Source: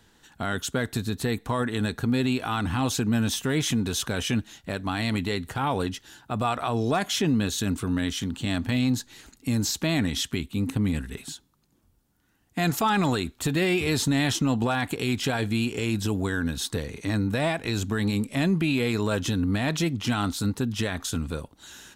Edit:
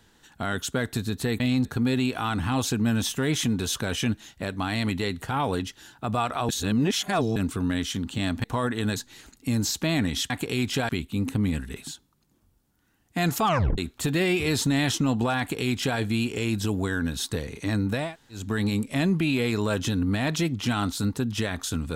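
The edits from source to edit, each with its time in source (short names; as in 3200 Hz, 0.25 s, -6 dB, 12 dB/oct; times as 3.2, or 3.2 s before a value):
1.4–1.92 swap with 8.71–8.96
6.76–7.63 reverse
12.86 tape stop 0.33 s
14.8–15.39 copy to 10.3
17.46–17.82 room tone, crossfade 0.24 s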